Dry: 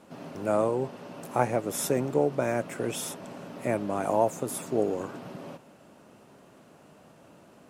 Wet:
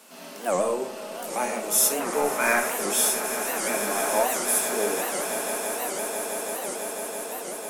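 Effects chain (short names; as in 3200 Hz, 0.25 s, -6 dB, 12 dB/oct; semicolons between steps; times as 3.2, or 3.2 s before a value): steep high-pass 180 Hz 36 dB/oct; tilt +4.5 dB/oct; harmonic-percussive split percussive -11 dB; 2.01–2.7 band shelf 1400 Hz +12 dB; in parallel at -3.5 dB: soft clip -25 dBFS, distortion -10 dB; on the sum: swelling echo 0.166 s, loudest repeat 8, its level -13.5 dB; shoebox room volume 470 m³, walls furnished, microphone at 1.5 m; record warp 78 rpm, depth 250 cents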